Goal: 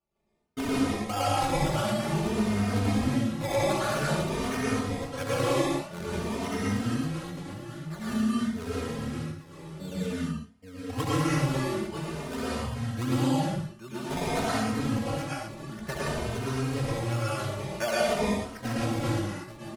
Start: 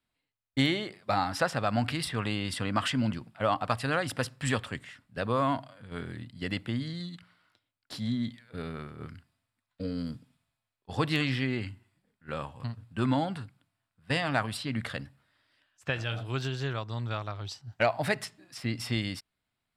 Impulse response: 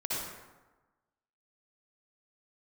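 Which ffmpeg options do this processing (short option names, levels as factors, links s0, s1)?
-filter_complex "[0:a]aecho=1:1:69|826:0.631|0.282,acrusher=samples=21:mix=1:aa=0.000001:lfo=1:lforange=21:lforate=1.5[s0];[1:a]atrim=start_sample=2205,afade=t=out:st=0.19:d=0.01,atrim=end_sample=8820,asetrate=24255,aresample=44100[s1];[s0][s1]afir=irnorm=-1:irlink=0,acompressor=threshold=0.0562:ratio=2,asplit=2[s2][s3];[s3]adelay=3,afreqshift=0.51[s4];[s2][s4]amix=inputs=2:normalize=1"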